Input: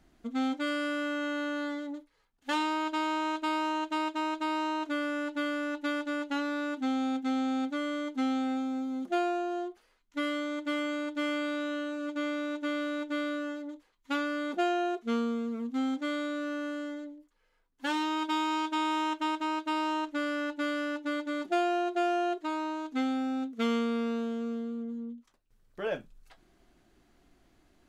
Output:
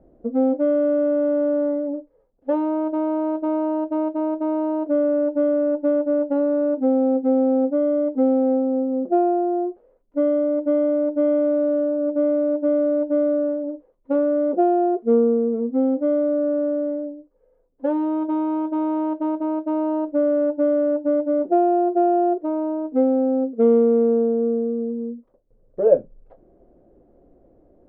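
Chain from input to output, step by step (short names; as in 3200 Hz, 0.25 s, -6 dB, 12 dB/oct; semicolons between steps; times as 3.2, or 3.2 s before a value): synth low-pass 530 Hz, resonance Q 5.6; gain +7.5 dB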